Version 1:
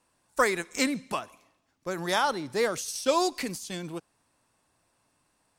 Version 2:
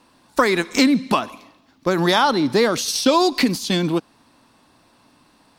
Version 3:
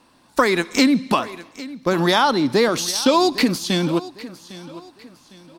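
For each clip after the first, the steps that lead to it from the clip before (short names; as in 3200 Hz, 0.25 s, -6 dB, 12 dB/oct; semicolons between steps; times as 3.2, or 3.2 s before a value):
graphic EQ 250/1000/4000/8000 Hz +10/+4/+8/-7 dB; in parallel at -1 dB: limiter -14 dBFS, peak gain reduction 7.5 dB; on the sum: compressor 3:1, threshold -21 dBFS, peak gain reduction 8 dB; gain +6.5 dB
feedback echo 0.805 s, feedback 36%, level -17.5 dB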